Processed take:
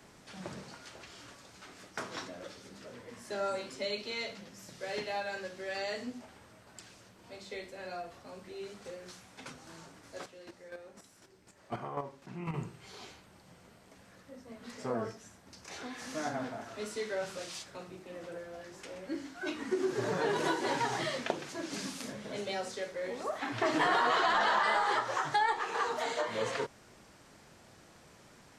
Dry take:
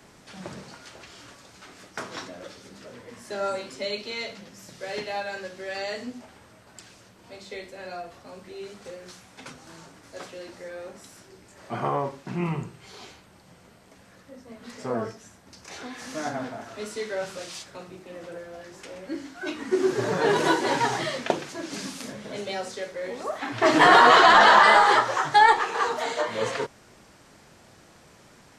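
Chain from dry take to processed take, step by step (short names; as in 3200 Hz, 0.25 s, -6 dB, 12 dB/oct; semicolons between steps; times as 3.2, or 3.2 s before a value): compressor 2.5:1, threshold -25 dBFS, peak gain reduction 9.5 dB; 10.22–12.54 chopper 4 Hz, depth 60%, duty 15%; gain -4.5 dB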